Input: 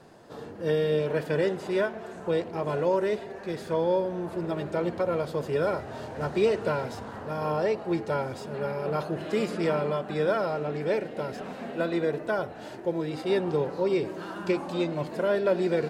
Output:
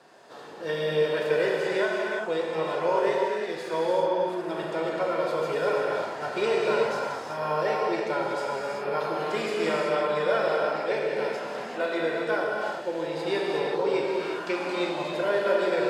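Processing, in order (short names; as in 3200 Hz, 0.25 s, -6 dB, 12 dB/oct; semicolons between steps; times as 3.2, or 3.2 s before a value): weighting filter A; non-linear reverb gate 0.41 s flat, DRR -3 dB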